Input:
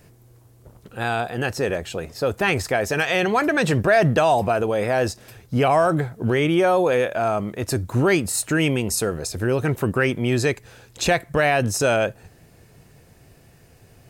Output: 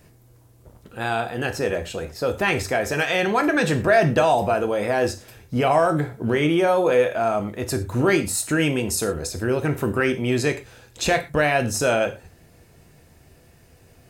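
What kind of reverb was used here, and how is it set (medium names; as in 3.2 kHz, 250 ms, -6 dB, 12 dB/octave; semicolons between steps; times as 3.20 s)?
gated-style reverb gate 140 ms falling, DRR 6.5 dB; trim -1.5 dB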